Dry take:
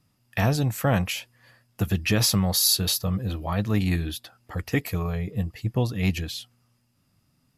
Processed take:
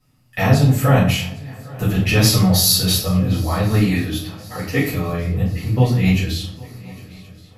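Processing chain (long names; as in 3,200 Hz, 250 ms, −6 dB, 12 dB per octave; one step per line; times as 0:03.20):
0:03.80–0:04.91: high-pass filter 170 Hz 6 dB per octave
feedback echo with a long and a short gap by turns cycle 1,075 ms, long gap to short 3 to 1, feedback 54%, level −22 dB
rectangular room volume 71 cubic metres, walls mixed, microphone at 2 metres
level −2.5 dB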